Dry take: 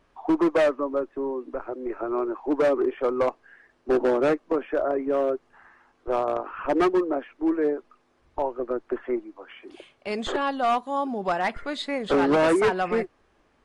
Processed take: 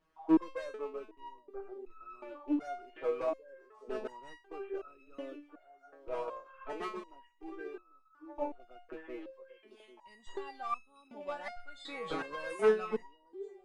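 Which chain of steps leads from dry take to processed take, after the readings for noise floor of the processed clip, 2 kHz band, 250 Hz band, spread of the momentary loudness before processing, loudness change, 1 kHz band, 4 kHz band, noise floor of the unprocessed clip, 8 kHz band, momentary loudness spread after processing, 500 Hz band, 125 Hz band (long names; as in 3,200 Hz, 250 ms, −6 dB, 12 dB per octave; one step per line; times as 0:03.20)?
−66 dBFS, −13.5 dB, −12.0 dB, 12 LU, −12.5 dB, −14.5 dB, −14.5 dB, −65 dBFS, can't be measured, 23 LU, −13.5 dB, below −15 dB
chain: loose part that buzzes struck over −36 dBFS, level −36 dBFS
echo through a band-pass that steps 795 ms, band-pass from 390 Hz, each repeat 1.4 octaves, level −11 dB
step-sequenced resonator 2.7 Hz 160–1,300 Hz
level +1 dB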